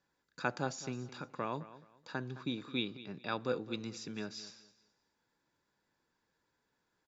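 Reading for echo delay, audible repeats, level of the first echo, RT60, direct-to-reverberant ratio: 0.213 s, 2, -16.0 dB, none, none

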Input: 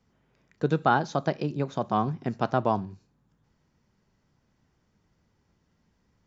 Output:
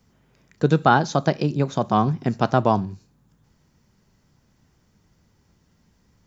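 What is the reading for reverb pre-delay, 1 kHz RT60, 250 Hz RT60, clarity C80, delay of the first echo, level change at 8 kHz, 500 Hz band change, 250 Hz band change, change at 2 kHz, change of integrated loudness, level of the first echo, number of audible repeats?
none, none, none, none, none, n/a, +5.5 dB, +7.0 dB, +6.0 dB, +6.5 dB, none, none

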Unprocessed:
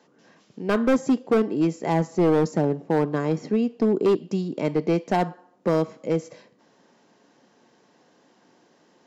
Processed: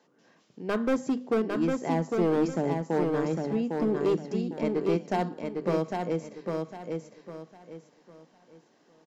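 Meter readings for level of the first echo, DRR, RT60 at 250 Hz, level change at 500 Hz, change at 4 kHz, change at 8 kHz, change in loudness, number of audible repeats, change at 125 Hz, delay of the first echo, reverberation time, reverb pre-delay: -4.0 dB, none, none, -4.5 dB, -4.5 dB, n/a, -5.0 dB, 3, -5.5 dB, 0.804 s, none, none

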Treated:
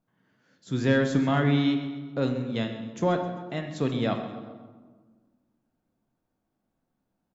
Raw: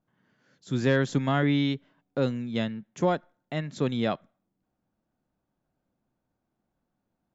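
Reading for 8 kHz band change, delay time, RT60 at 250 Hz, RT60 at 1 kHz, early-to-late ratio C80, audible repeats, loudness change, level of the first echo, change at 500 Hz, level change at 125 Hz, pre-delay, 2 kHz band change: n/a, 0.131 s, 2.0 s, 1.4 s, 8.5 dB, 3, +1.0 dB, -14.5 dB, +0.5 dB, +1.0 dB, 4 ms, +0.5 dB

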